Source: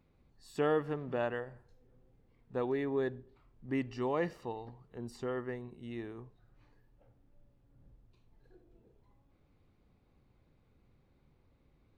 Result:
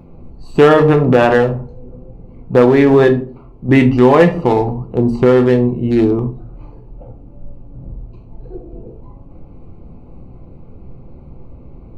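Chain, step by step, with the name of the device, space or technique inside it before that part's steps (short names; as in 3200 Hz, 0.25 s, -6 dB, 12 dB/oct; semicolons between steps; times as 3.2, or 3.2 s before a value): Wiener smoothing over 25 samples; 3.07–3.69 low shelf 190 Hz -8.5 dB; shoebox room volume 180 m³, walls furnished, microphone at 0.81 m; loud club master (compressor 1.5:1, threshold -36 dBFS, peak gain reduction 4.5 dB; hard clip -28 dBFS, distortion -21 dB; maximiser +30 dB); gain -1 dB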